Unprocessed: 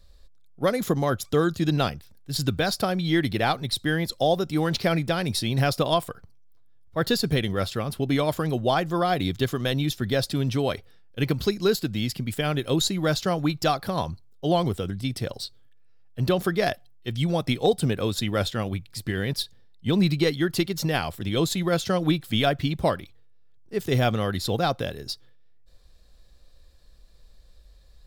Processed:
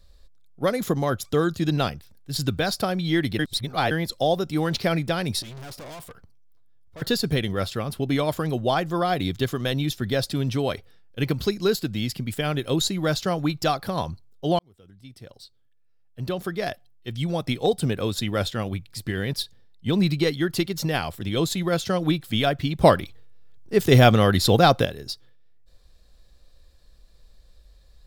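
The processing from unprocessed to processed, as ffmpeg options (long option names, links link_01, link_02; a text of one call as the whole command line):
ffmpeg -i in.wav -filter_complex "[0:a]asettb=1/sr,asplit=3[link_01][link_02][link_03];[link_01]atrim=end=5.424[link_04];[link_02]atrim=start=5.42:end=7.02,asetpts=PTS-STARTPTS,afade=type=in:duration=0.004:curve=qsin,afade=type=out:start_time=1.596:duration=0.004:curve=qsin,aeval=exprs='(tanh(79.4*val(0)+0.25)-tanh(0.25))/79.4':channel_layout=same[link_05];[link_03]atrim=start=7.016[link_06];[link_04][link_05]acrossfade=duration=0.004:curve1=hsin:curve2=qsin[link_07];[link_07][link_06]acrossfade=duration=0.004:curve1=qsin:curve2=hsin,asplit=6[link_08][link_09][link_10][link_11][link_12][link_13];[link_08]atrim=end=3.392[link_14];[link_09]atrim=start=3.388:end=3.912,asetpts=PTS-STARTPTS,areverse[link_15];[link_10]atrim=start=3.908:end=14.59,asetpts=PTS-STARTPTS,afade=type=out:start_time=10.678:duration=0.004:curve=hsin[link_16];[link_11]atrim=start=14.59:end=22.812,asetpts=PTS-STARTPTS,afade=type=in:duration=3.36[link_17];[link_12]atrim=start=22.808:end=24.852,asetpts=PTS-STARTPTS,volume=8dB[link_18];[link_13]atrim=start=24.848[link_19];[link_14][link_15]acrossfade=duration=0.004:curve1=hsin:curve2=hsin[link_20];[link_16][link_17]concat=n=2:v=0:a=1[link_21];[link_20][link_21]acrossfade=duration=0.004:curve1=hsin:curve2=hsin[link_22];[link_22][link_18]acrossfade=duration=0.004:curve1=hsin:curve2=hsin[link_23];[link_23][link_19]acrossfade=duration=0.004:curve1=hsin:curve2=hsin" out.wav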